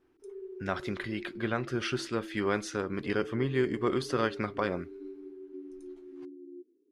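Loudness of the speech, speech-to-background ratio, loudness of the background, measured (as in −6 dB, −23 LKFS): −32.5 LKFS, 13.0 dB, −45.5 LKFS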